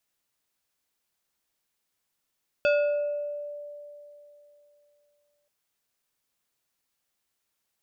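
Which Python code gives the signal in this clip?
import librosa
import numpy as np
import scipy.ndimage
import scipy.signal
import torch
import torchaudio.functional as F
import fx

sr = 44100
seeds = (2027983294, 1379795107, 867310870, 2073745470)

y = fx.fm2(sr, length_s=2.83, level_db=-18.0, carrier_hz=585.0, ratio=3.45, index=0.83, index_s=1.18, decay_s=3.06, shape='exponential')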